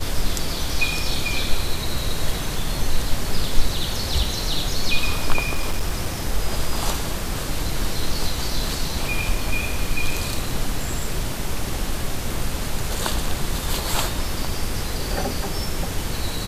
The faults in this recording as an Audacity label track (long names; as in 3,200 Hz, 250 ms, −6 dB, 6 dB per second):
5.370000	6.060000	clipping −15.5 dBFS